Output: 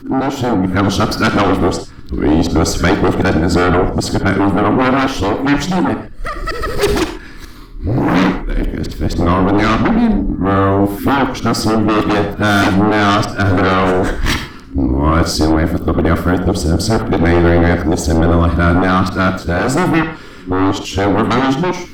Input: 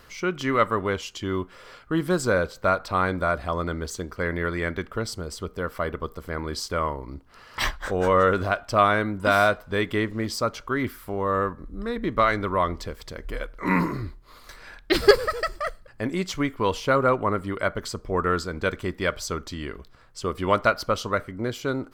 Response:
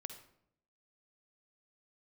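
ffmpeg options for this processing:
-filter_complex "[0:a]areverse,lowshelf=f=410:t=q:w=3:g=10,asplit=2[a][b];[b]aeval=exprs='1.41*sin(PI/2*10*val(0)/1.41)':c=same,volume=-11dB[c];[a][c]amix=inputs=2:normalize=0[d];[1:a]atrim=start_sample=2205,atrim=end_sample=6615[e];[d][e]afir=irnorm=-1:irlink=0,dynaudnorm=f=140:g=9:m=11.5dB,volume=-2dB"

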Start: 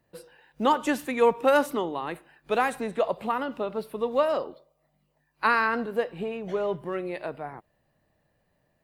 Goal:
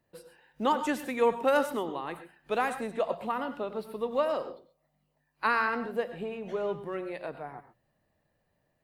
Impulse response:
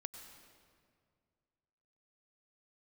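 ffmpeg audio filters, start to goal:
-filter_complex "[0:a]bandreject=f=60:t=h:w=6,bandreject=f=120:t=h:w=6,bandreject=f=180:t=h:w=6[a];[1:a]atrim=start_sample=2205,atrim=end_sample=6174[b];[a][b]afir=irnorm=-1:irlink=0"

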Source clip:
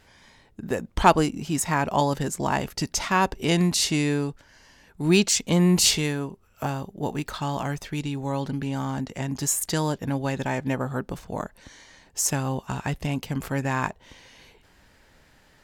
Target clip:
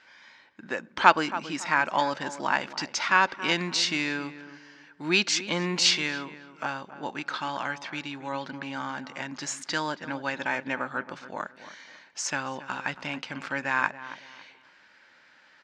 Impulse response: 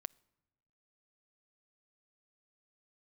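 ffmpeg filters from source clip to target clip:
-filter_complex "[0:a]highpass=400,equalizer=f=430:t=q:w=4:g=-10,equalizer=f=700:t=q:w=4:g=-6,equalizer=f=1.5k:t=q:w=4:g=7,equalizer=f=2.3k:t=q:w=4:g=4,lowpass=f=5.6k:w=0.5412,lowpass=f=5.6k:w=1.3066,asplit=2[a][b];[b]adelay=276,lowpass=f=1.6k:p=1,volume=-13dB,asplit=2[c][d];[d]adelay=276,lowpass=f=1.6k:p=1,volume=0.33,asplit=2[e][f];[f]adelay=276,lowpass=f=1.6k:p=1,volume=0.33[g];[a][c][e][g]amix=inputs=4:normalize=0,asplit=2[h][i];[1:a]atrim=start_sample=2205,lowshelf=f=66:g=8.5[j];[i][j]afir=irnorm=-1:irlink=0,volume=9dB[k];[h][k]amix=inputs=2:normalize=0,volume=-8.5dB"

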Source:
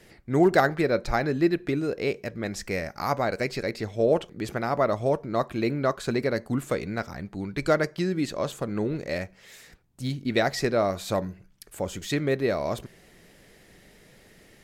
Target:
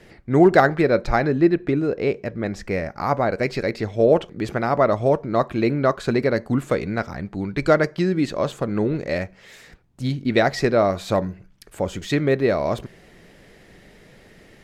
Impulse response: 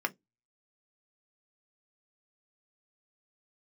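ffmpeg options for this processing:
-af "asetnsamples=n=441:p=0,asendcmd='1.28 lowpass f 1600;3.43 lowpass f 3400',lowpass=f=3k:p=1,volume=6dB"

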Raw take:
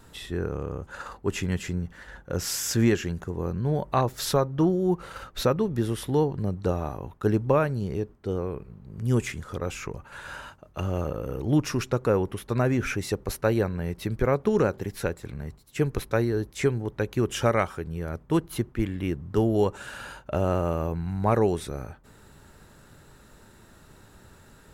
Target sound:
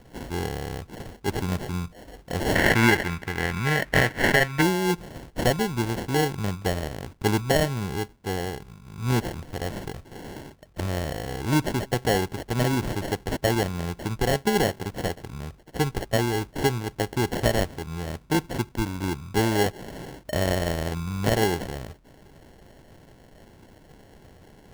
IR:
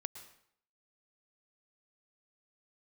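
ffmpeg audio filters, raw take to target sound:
-filter_complex "[0:a]highshelf=f=5.1k:g=11.5,acrusher=samples=36:mix=1:aa=0.000001,asettb=1/sr,asplit=3[a][b][c];[a]atrim=end=2.554[d];[b]atrim=start=2.55:end=4.62,asetpts=PTS-STARTPTS,afade=t=in:d=0.004:c=qsin,afade=t=out:st=2.066:d=0.004:c=qsin,equalizer=f=1.9k:t=o:w=0.96:g=13.5[e];[c]atrim=start=4.616[f];[d][e]acrossfade=d=0.004:c1=hsin:c2=qsin[g];[g][f]acrossfade=d=0.004:c1=qsin:c2=hsin"

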